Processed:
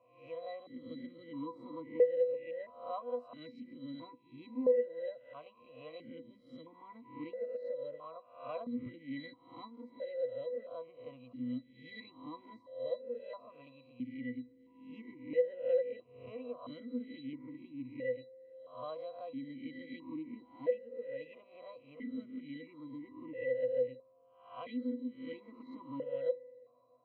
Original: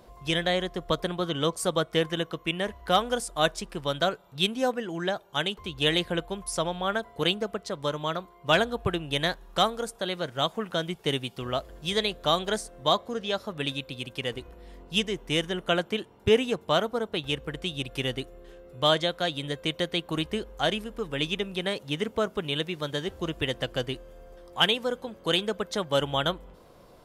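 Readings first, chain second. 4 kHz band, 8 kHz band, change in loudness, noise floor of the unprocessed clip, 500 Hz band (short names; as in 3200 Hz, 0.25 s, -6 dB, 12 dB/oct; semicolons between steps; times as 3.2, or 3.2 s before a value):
-33.0 dB, under -40 dB, -11.5 dB, -54 dBFS, -8.0 dB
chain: spectral swells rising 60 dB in 0.55 s; octave resonator B, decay 0.15 s; vowel sequencer 1.5 Hz; gain +8.5 dB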